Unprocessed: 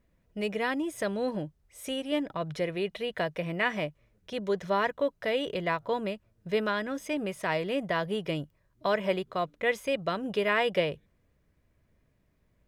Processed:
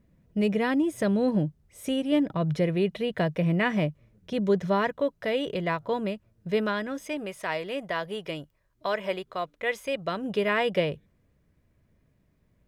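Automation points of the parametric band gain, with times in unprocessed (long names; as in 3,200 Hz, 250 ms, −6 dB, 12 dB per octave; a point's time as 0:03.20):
parametric band 160 Hz 2.4 octaves
0:04.56 +11.5 dB
0:05.02 +5 dB
0:06.69 +5 dB
0:07.36 −6 dB
0:09.69 −6 dB
0:10.40 +5 dB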